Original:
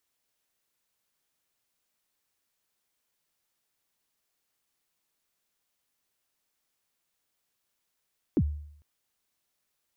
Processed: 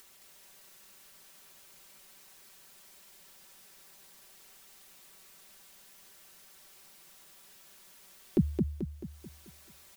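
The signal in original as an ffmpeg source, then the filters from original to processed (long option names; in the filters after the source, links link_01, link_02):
-f lavfi -i "aevalsrc='0.126*pow(10,-3*t/0.68)*sin(2*PI*(380*0.057/log(74/380)*(exp(log(74/380)*min(t,0.057)/0.057)-1)+74*max(t-0.057,0)))':duration=0.45:sample_rate=44100"
-af "aecho=1:1:5.2:0.65,acompressor=mode=upward:threshold=-41dB:ratio=2.5,aecho=1:1:218|436|654|872|1090|1308:0.631|0.297|0.139|0.0655|0.0308|0.0145"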